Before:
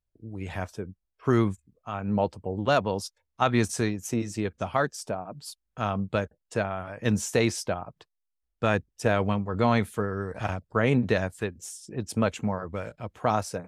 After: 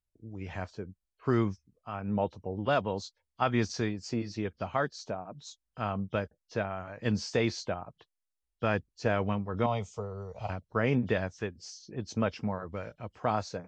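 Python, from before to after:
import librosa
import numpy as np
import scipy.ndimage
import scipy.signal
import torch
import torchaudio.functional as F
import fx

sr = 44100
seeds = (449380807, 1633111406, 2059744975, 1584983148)

y = fx.freq_compress(x, sr, knee_hz=2800.0, ratio=1.5)
y = fx.fixed_phaser(y, sr, hz=680.0, stages=4, at=(9.66, 10.5))
y = F.gain(torch.from_numpy(y), -4.5).numpy()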